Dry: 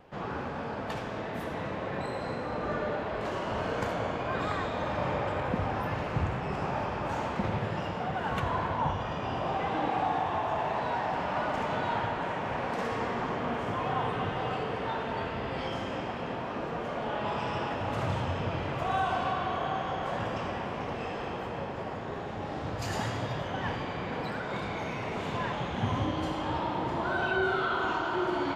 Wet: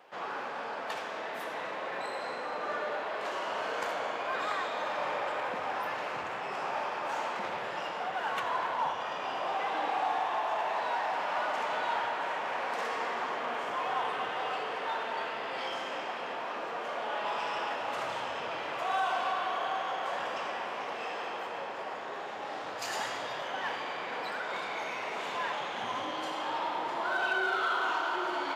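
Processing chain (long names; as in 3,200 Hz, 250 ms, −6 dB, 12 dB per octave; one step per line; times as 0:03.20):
in parallel at −7.5 dB: gain into a clipping stage and back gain 34 dB
on the sum: Bessel high-pass filter 720 Hz, order 2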